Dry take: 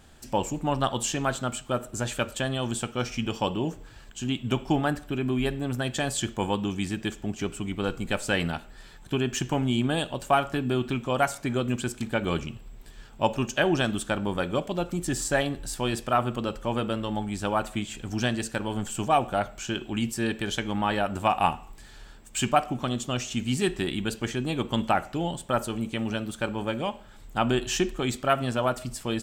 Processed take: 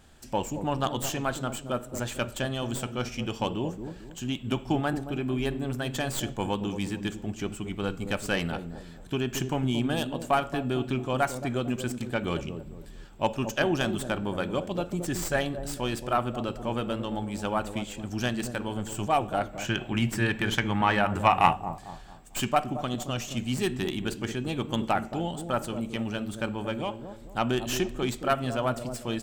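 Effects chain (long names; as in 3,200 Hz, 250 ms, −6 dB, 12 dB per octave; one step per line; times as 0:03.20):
stylus tracing distortion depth 0.07 ms
0:19.53–0:21.53: graphic EQ with 10 bands 125 Hz +9 dB, 1,000 Hz +5 dB, 2,000 Hz +8 dB
delay with a low-pass on its return 224 ms, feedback 37%, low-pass 600 Hz, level −7 dB
level −2.5 dB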